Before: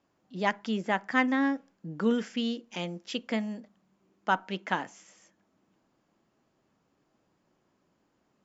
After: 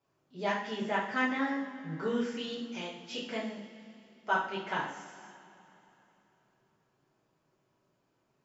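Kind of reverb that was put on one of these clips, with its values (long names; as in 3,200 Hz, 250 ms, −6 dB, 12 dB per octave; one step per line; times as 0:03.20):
coupled-rooms reverb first 0.54 s, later 3.3 s, from −18 dB, DRR −8.5 dB
level −11 dB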